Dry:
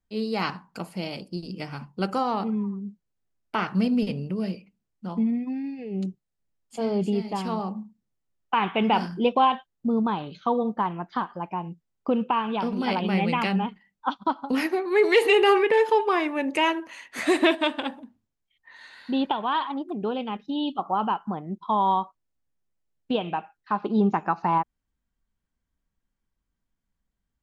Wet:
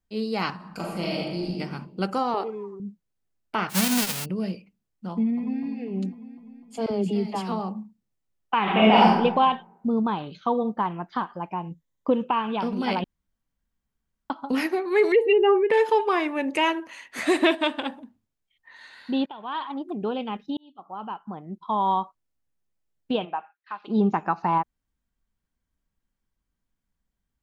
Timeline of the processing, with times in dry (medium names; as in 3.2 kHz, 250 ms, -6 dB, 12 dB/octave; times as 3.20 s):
0.55–1.52 s: reverb throw, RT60 1.3 s, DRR -3.5 dB
2.34–2.80 s: resonant low shelf 290 Hz -9.5 dB, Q 3
3.69–4.24 s: formants flattened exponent 0.1
5.12–5.62 s: echo throw 250 ms, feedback 65%, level -9 dB
6.86–7.52 s: phase dispersion lows, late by 53 ms, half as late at 410 Hz
8.62–9.16 s: reverb throw, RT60 0.96 s, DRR -7 dB
11.70–12.25 s: rippled EQ curve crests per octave 1.1, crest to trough 8 dB
13.04–14.30 s: room tone
15.12–15.70 s: spectral contrast enhancement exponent 1.9
19.26–19.87 s: fade in linear, from -20 dB
20.57–22.01 s: fade in
23.24–23.87 s: band-pass filter 760 Hz -> 3.8 kHz, Q 1.1